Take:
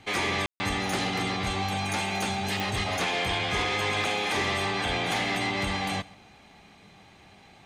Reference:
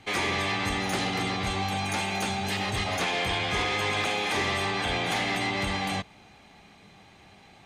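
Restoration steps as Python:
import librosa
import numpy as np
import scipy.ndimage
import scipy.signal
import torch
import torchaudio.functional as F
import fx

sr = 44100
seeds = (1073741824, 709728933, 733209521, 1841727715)

y = fx.fix_declick_ar(x, sr, threshold=10.0)
y = fx.fix_ambience(y, sr, seeds[0], print_start_s=6.32, print_end_s=6.82, start_s=0.46, end_s=0.6)
y = fx.fix_echo_inverse(y, sr, delay_ms=133, level_db=-22.5)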